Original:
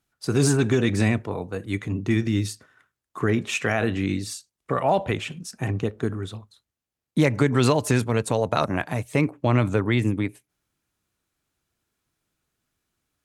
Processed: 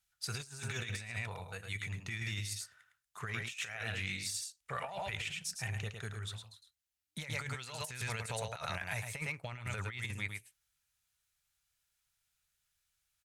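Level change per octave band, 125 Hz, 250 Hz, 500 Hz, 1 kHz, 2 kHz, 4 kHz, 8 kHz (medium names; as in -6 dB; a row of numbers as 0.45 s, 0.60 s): -17.0 dB, -27.0 dB, -22.5 dB, -16.0 dB, -9.0 dB, -7.5 dB, -8.0 dB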